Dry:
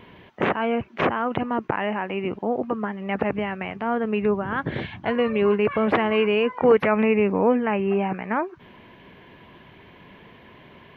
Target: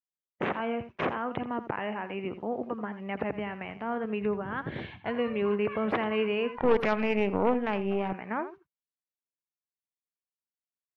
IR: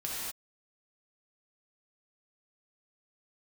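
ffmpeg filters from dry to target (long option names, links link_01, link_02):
-filter_complex "[0:a]agate=range=-58dB:threshold=-37dB:ratio=16:detection=peak,aecho=1:1:83:0.224,asettb=1/sr,asplit=3[link_01][link_02][link_03];[link_01]atrim=end=6.554[link_04];[link_02]atrim=start=6.55:end=8.13,asetpts=PTS-STARTPTS,afade=type=in:duration=0.004:curve=qsin,afade=type=out:start_time=1.576:duration=0.004:curve=qsin,aeval=exprs='0.447*(cos(1*acos(clip(val(0)/0.447,-1,1)))-cos(1*PI/2))+0.0794*(cos(4*acos(clip(val(0)/0.447,-1,1)))-cos(4*PI/2))':channel_layout=same[link_05];[link_03]atrim=start=8.126[link_06];[link_04][link_05]acrossfade=duration=0.004:curve1=hsin:curve2=qsin[link_07];[link_07][link_06]acrossfade=duration=0.004:curve1=qsin:curve2=hsin,volume=-8dB"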